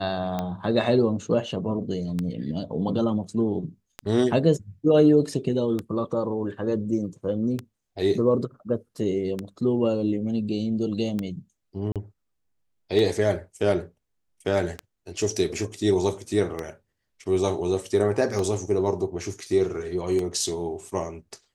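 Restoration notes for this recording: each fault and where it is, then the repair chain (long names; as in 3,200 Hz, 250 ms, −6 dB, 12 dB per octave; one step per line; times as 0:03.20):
scratch tick 33 1/3 rpm −15 dBFS
0:11.92–0:11.96: drop-out 37 ms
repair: click removal
repair the gap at 0:11.92, 37 ms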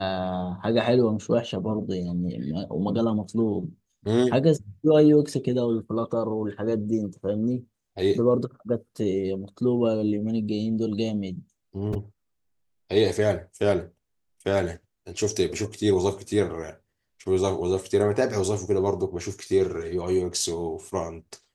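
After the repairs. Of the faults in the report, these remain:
none of them is left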